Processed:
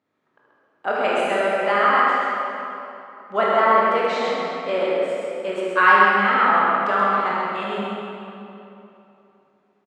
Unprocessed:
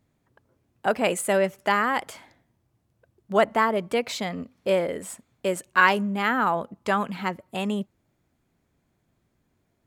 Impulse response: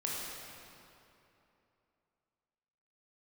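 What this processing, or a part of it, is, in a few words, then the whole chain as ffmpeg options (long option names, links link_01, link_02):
station announcement: -filter_complex "[0:a]highpass=310,lowpass=3900,equalizer=frequency=1300:width_type=o:width=0.38:gain=6,aecho=1:1:75.8|131.2:0.355|0.562[link_01];[1:a]atrim=start_sample=2205[link_02];[link_01][link_02]afir=irnorm=-1:irlink=0,volume=-1dB"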